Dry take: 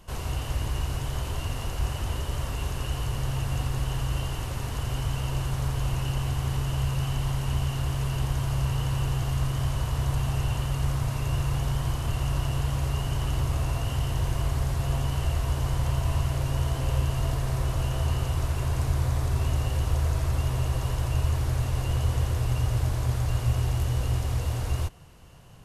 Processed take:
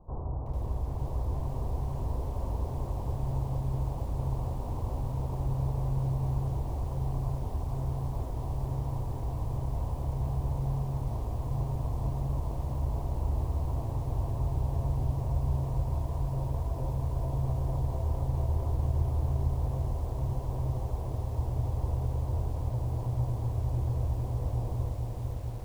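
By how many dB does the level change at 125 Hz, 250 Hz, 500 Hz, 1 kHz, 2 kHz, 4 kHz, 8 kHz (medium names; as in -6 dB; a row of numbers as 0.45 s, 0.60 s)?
-4.0 dB, -3.5 dB, -2.5 dB, -5.0 dB, under -20 dB, under -20 dB, under -15 dB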